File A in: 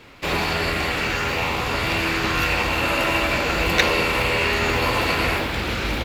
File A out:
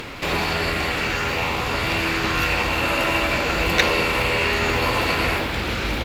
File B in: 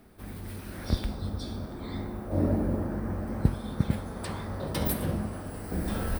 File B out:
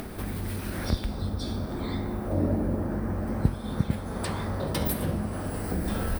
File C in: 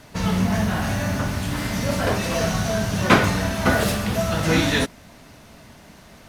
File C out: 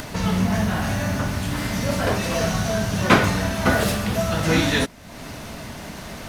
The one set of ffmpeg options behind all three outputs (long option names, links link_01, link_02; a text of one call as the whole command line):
ffmpeg -i in.wav -af "acompressor=mode=upward:threshold=-23dB:ratio=2.5" out.wav